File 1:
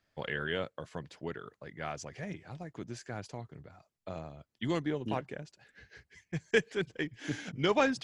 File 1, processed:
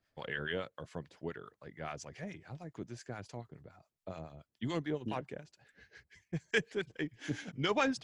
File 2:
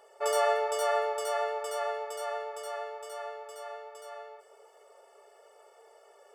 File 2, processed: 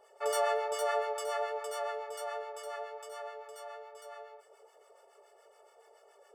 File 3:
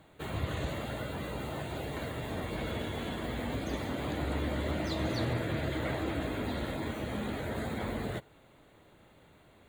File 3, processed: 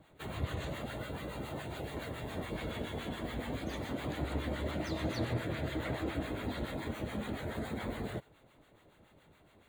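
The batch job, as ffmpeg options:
-filter_complex "[0:a]acrossover=split=850[a][b];[a]aeval=exprs='val(0)*(1-0.7/2+0.7/2*cos(2*PI*7.1*n/s))':c=same[c];[b]aeval=exprs='val(0)*(1-0.7/2-0.7/2*cos(2*PI*7.1*n/s))':c=same[d];[c][d]amix=inputs=2:normalize=0"

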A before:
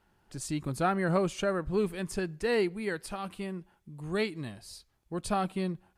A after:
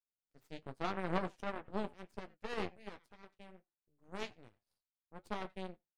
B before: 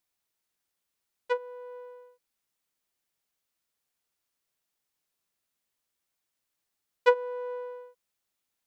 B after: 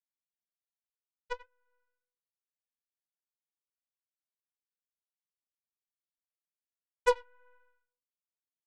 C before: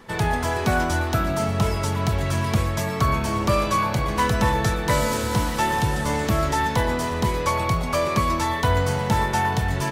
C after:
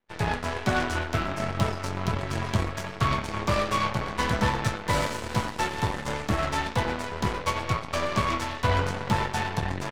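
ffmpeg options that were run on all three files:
-filter_complex "[0:a]asplit=2[a][b];[b]adelay=90,highpass=300,lowpass=3.4k,asoftclip=type=hard:threshold=-17.5dB,volume=-9dB[c];[a][c]amix=inputs=2:normalize=0,acrossover=split=2400[d][e];[e]adynamicsmooth=sensitivity=5:basefreq=6.4k[f];[d][f]amix=inputs=2:normalize=0,aeval=exprs='0.376*(cos(1*acos(clip(val(0)/0.376,-1,1)))-cos(1*PI/2))+0.0266*(cos(6*acos(clip(val(0)/0.376,-1,1)))-cos(6*PI/2))+0.0531*(cos(7*acos(clip(val(0)/0.376,-1,1)))-cos(7*PI/2))+0.0335*(cos(8*acos(clip(val(0)/0.376,-1,1)))-cos(8*PI/2))':c=same,flanger=delay=8.1:depth=3.7:regen=-47:speed=1.3:shape=triangular"

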